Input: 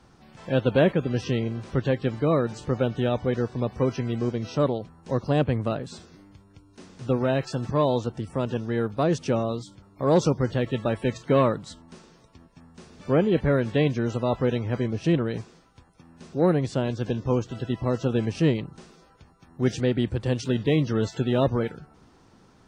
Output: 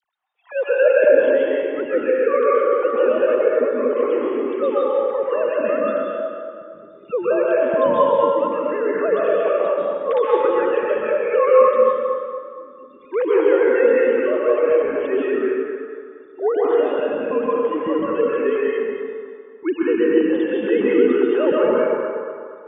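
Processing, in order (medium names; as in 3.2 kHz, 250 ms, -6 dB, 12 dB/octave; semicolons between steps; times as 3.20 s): formants replaced by sine waves; spectral noise reduction 21 dB; phase dispersion lows, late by 43 ms, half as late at 1.3 kHz; on a send: band-passed feedback delay 232 ms, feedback 51%, band-pass 920 Hz, level -5 dB; on the sum: plate-style reverb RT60 1.7 s, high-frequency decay 0.75×, pre-delay 115 ms, DRR -5.5 dB; reverse; upward compressor, threshold -38 dBFS; reverse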